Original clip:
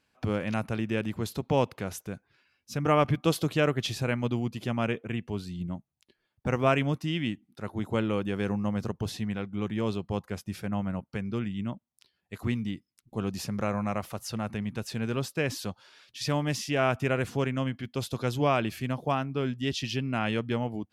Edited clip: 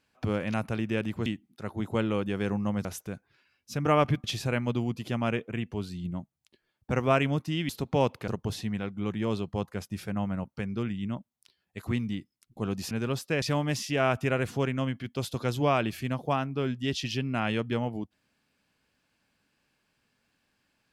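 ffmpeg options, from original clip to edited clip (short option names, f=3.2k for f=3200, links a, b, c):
-filter_complex "[0:a]asplit=8[a][b][c][d][e][f][g][h];[a]atrim=end=1.262[i];[b]atrim=start=7.248:end=8.842[j];[c]atrim=start=1.848:end=3.242[k];[d]atrim=start=3.798:end=7.252[l];[e]atrim=start=1.258:end=1.852[m];[f]atrim=start=8.838:end=13.472[n];[g]atrim=start=14.978:end=15.492[o];[h]atrim=start=16.208[p];[i][j]acrossfade=d=0.004:c1=hsin:c2=hsin[q];[q][k]acrossfade=d=0.004:c1=hsin:c2=hsin[r];[r][l]acrossfade=d=0.004:c1=hsin:c2=hsin[s];[s][m]acrossfade=d=0.004:c1=hsin:c2=hsin[t];[t][n]acrossfade=d=0.004:c1=hsin:c2=hsin[u];[u][o]acrossfade=d=0.004:c1=hsin:c2=hsin[v];[v][p]acrossfade=d=0.004:c1=hsin:c2=hsin"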